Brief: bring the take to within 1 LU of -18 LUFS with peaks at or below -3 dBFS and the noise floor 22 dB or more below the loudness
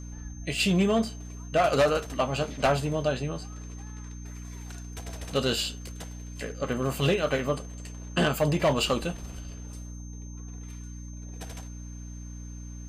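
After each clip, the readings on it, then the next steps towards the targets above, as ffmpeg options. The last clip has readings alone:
hum 60 Hz; highest harmonic 300 Hz; hum level -38 dBFS; steady tone 6.3 kHz; tone level -50 dBFS; loudness -27.5 LUFS; peak level -14.5 dBFS; loudness target -18.0 LUFS
-> -af "bandreject=f=60:t=h:w=4,bandreject=f=120:t=h:w=4,bandreject=f=180:t=h:w=4,bandreject=f=240:t=h:w=4,bandreject=f=300:t=h:w=4"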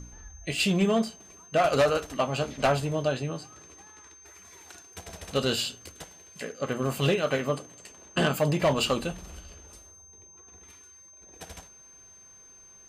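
hum not found; steady tone 6.3 kHz; tone level -50 dBFS
-> -af "bandreject=f=6300:w=30"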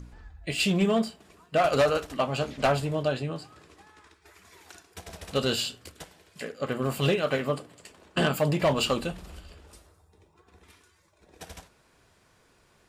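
steady tone not found; loudness -27.0 LUFS; peak level -14.5 dBFS; loudness target -18.0 LUFS
-> -af "volume=2.82"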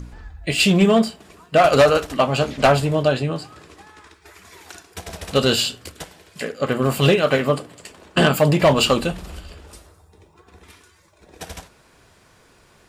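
loudness -18.0 LUFS; peak level -5.5 dBFS; noise floor -55 dBFS

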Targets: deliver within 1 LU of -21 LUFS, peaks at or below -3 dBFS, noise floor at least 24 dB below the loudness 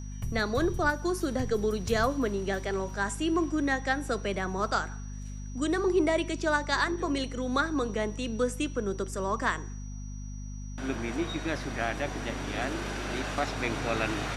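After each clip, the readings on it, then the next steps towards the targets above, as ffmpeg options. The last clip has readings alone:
hum 50 Hz; highest harmonic 250 Hz; hum level -36 dBFS; steady tone 5.8 kHz; tone level -52 dBFS; loudness -30.0 LUFS; peak level -13.5 dBFS; loudness target -21.0 LUFS
-> -af "bandreject=f=50:t=h:w=6,bandreject=f=100:t=h:w=6,bandreject=f=150:t=h:w=6,bandreject=f=200:t=h:w=6,bandreject=f=250:t=h:w=6"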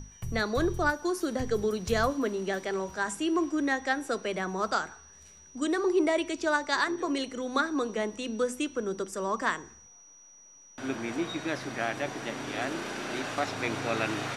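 hum not found; steady tone 5.8 kHz; tone level -52 dBFS
-> -af "bandreject=f=5800:w=30"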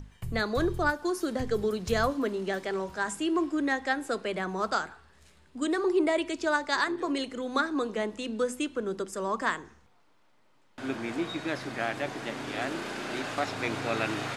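steady tone not found; loudness -30.5 LUFS; peak level -14.0 dBFS; loudness target -21.0 LUFS
-> -af "volume=2.99"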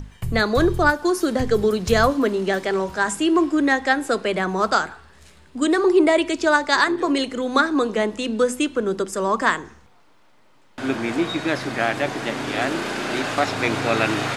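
loudness -21.0 LUFS; peak level -4.5 dBFS; noise floor -53 dBFS

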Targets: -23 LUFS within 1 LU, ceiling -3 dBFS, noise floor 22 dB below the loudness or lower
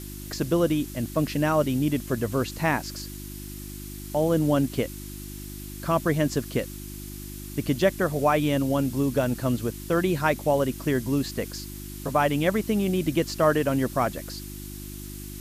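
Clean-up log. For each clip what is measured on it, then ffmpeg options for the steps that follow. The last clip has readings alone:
hum 50 Hz; highest harmonic 350 Hz; hum level -36 dBFS; noise floor -38 dBFS; noise floor target -48 dBFS; loudness -25.5 LUFS; peak level -8.0 dBFS; loudness target -23.0 LUFS
-> -af "bandreject=f=50:t=h:w=4,bandreject=f=100:t=h:w=4,bandreject=f=150:t=h:w=4,bandreject=f=200:t=h:w=4,bandreject=f=250:t=h:w=4,bandreject=f=300:t=h:w=4,bandreject=f=350:t=h:w=4"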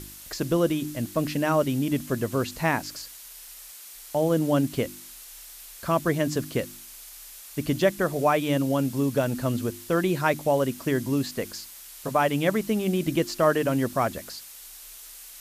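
hum not found; noise floor -45 dBFS; noise floor target -48 dBFS
-> -af "afftdn=nr=6:nf=-45"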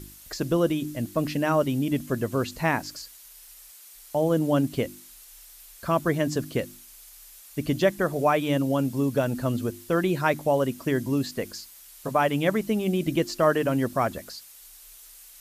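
noise floor -49 dBFS; loudness -26.0 LUFS; peak level -8.5 dBFS; loudness target -23.0 LUFS
-> -af "volume=1.41"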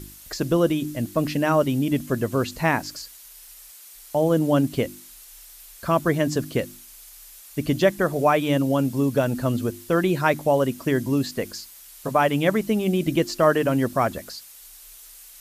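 loudness -23.0 LUFS; peak level -5.5 dBFS; noise floor -46 dBFS

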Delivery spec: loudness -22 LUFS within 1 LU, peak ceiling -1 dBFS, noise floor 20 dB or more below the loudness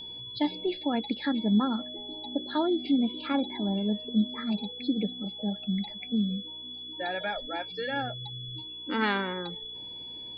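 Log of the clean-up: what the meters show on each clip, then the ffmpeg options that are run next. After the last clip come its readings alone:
hum 60 Hz; highest harmonic 480 Hz; hum level -59 dBFS; steady tone 3.4 kHz; tone level -39 dBFS; loudness -30.5 LUFS; peak level -14.5 dBFS; loudness target -22.0 LUFS
-> -af "bandreject=f=60:t=h:w=4,bandreject=f=120:t=h:w=4,bandreject=f=180:t=h:w=4,bandreject=f=240:t=h:w=4,bandreject=f=300:t=h:w=4,bandreject=f=360:t=h:w=4,bandreject=f=420:t=h:w=4,bandreject=f=480:t=h:w=4"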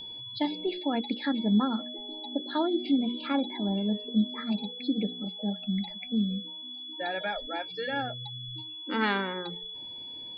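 hum not found; steady tone 3.4 kHz; tone level -39 dBFS
-> -af "bandreject=f=3400:w=30"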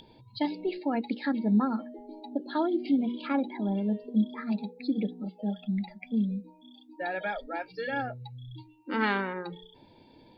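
steady tone not found; loudness -31.0 LUFS; peak level -15.0 dBFS; loudness target -22.0 LUFS
-> -af "volume=2.82"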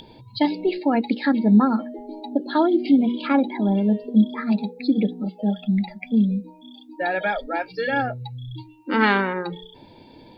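loudness -22.0 LUFS; peak level -6.0 dBFS; noise floor -49 dBFS

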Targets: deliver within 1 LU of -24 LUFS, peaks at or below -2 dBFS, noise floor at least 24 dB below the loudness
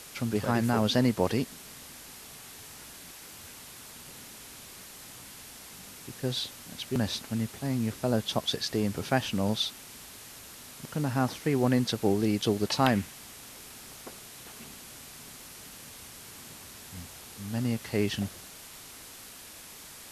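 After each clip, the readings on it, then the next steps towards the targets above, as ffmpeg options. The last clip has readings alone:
noise floor -48 dBFS; noise floor target -53 dBFS; loudness -29.0 LUFS; peak level -10.0 dBFS; loudness target -24.0 LUFS
-> -af "afftdn=nr=6:nf=-48"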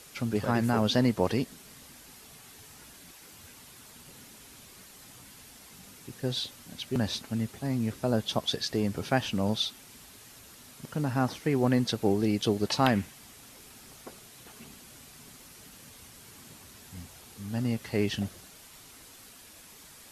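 noise floor -52 dBFS; noise floor target -53 dBFS
-> -af "afftdn=nr=6:nf=-52"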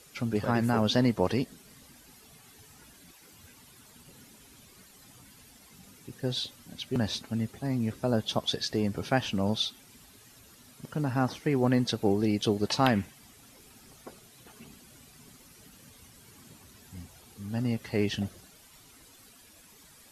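noise floor -56 dBFS; loudness -29.5 LUFS; peak level -10.0 dBFS; loudness target -24.0 LUFS
-> -af "volume=1.88"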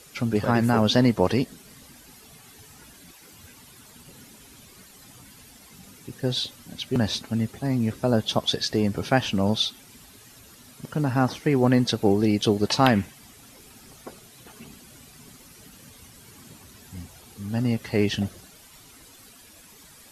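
loudness -24.0 LUFS; peak level -4.5 dBFS; noise floor -50 dBFS

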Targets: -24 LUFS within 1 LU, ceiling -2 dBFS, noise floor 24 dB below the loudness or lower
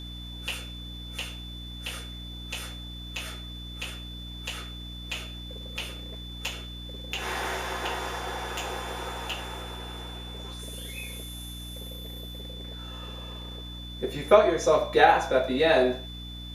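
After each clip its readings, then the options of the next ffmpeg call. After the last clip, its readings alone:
hum 60 Hz; highest harmonic 300 Hz; hum level -38 dBFS; steady tone 3.5 kHz; tone level -42 dBFS; loudness -30.0 LUFS; peak level -4.5 dBFS; loudness target -24.0 LUFS
-> -af "bandreject=f=60:t=h:w=6,bandreject=f=120:t=h:w=6,bandreject=f=180:t=h:w=6,bandreject=f=240:t=h:w=6,bandreject=f=300:t=h:w=6"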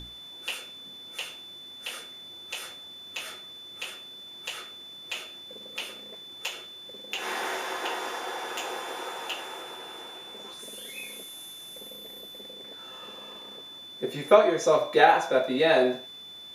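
hum not found; steady tone 3.5 kHz; tone level -42 dBFS
-> -af "bandreject=f=3500:w=30"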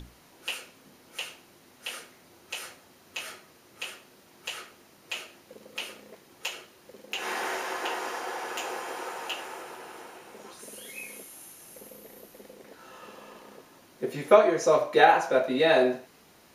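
steady tone not found; loudness -28.0 LUFS; peak level -4.5 dBFS; loudness target -24.0 LUFS
-> -af "volume=1.58,alimiter=limit=0.794:level=0:latency=1"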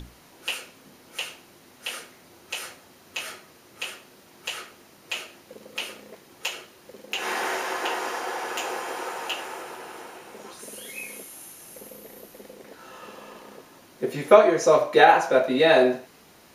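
loudness -24.5 LUFS; peak level -2.0 dBFS; noise floor -53 dBFS

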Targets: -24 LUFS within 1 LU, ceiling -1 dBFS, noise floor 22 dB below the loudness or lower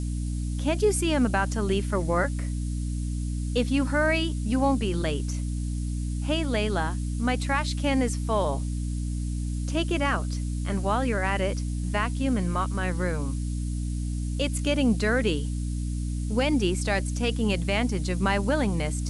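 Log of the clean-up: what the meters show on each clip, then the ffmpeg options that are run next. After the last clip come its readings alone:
hum 60 Hz; highest harmonic 300 Hz; hum level -26 dBFS; noise floor -30 dBFS; noise floor target -49 dBFS; loudness -27.0 LUFS; peak level -11.5 dBFS; loudness target -24.0 LUFS
-> -af "bandreject=f=60:t=h:w=4,bandreject=f=120:t=h:w=4,bandreject=f=180:t=h:w=4,bandreject=f=240:t=h:w=4,bandreject=f=300:t=h:w=4"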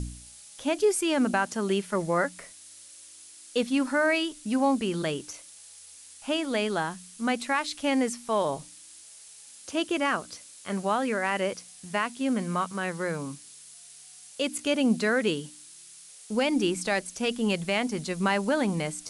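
hum not found; noise floor -49 dBFS; noise floor target -50 dBFS
-> -af "afftdn=nr=6:nf=-49"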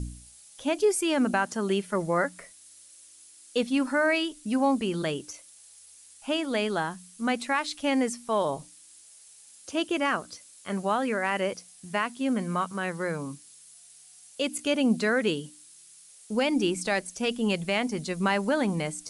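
noise floor -53 dBFS; loudness -28.0 LUFS; peak level -13.5 dBFS; loudness target -24.0 LUFS
-> -af "volume=1.58"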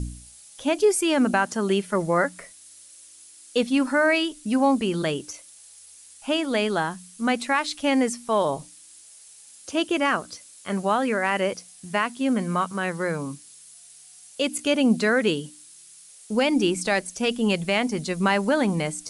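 loudness -24.0 LUFS; peak level -9.5 dBFS; noise floor -49 dBFS

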